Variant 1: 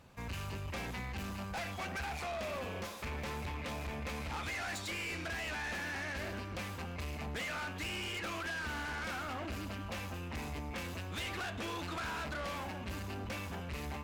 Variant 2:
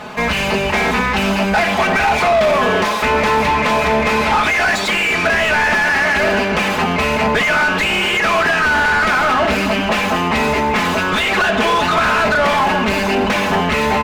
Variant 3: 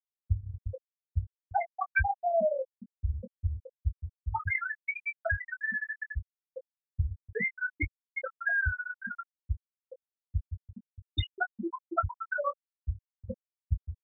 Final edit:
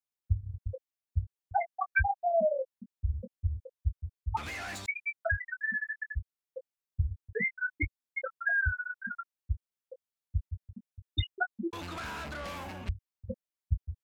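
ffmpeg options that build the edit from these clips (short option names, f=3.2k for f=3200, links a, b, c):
-filter_complex "[0:a]asplit=2[a][b];[2:a]asplit=3[c][d][e];[c]atrim=end=4.372[f];[a]atrim=start=4.368:end=4.862[g];[d]atrim=start=4.858:end=11.732[h];[b]atrim=start=11.728:end=12.892[i];[e]atrim=start=12.888[j];[f][g]acrossfade=d=0.004:c1=hsin:c2=hsin[k];[k][h]acrossfade=d=0.004:c1=hsin:c2=hsin[l];[l][i]acrossfade=d=0.004:c1=hsin:c2=hsin[m];[m][j]acrossfade=d=0.004:c1=hsin:c2=hsin"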